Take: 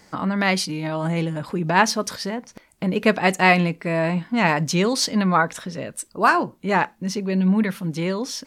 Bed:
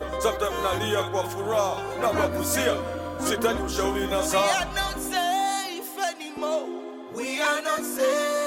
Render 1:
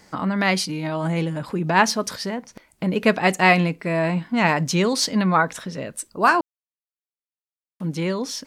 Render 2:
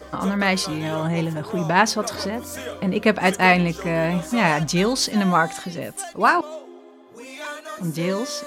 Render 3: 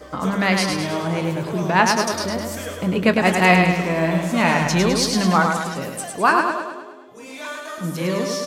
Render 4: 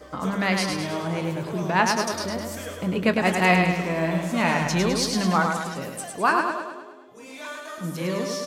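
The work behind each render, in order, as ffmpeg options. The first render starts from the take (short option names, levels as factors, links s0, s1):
-filter_complex "[0:a]asplit=3[s0][s1][s2];[s0]atrim=end=6.41,asetpts=PTS-STARTPTS,afade=t=out:st=6.406:d=0.004:c=hsin[s3];[s1]atrim=start=6.41:end=7.8,asetpts=PTS-STARTPTS,volume=0[s4];[s2]atrim=start=7.8,asetpts=PTS-STARTPTS,afade=t=in:d=0.004:c=hsin[s5];[s3][s4][s5]concat=n=3:v=0:a=1"
-filter_complex "[1:a]volume=0.355[s0];[0:a][s0]amix=inputs=2:normalize=0"
-filter_complex "[0:a]asplit=2[s0][s1];[s1]adelay=22,volume=0.224[s2];[s0][s2]amix=inputs=2:normalize=0,asplit=2[s3][s4];[s4]aecho=0:1:104|208|312|416|520|624|728:0.596|0.322|0.174|0.0938|0.0506|0.0274|0.0148[s5];[s3][s5]amix=inputs=2:normalize=0"
-af "volume=0.596"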